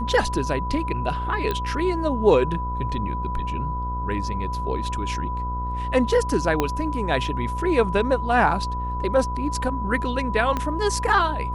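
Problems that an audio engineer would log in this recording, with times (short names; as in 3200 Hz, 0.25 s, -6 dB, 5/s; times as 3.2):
buzz 60 Hz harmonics 24 -29 dBFS
tone 990 Hz -28 dBFS
1.51 pop -13 dBFS
6.6 pop -7 dBFS
10.57 pop -12 dBFS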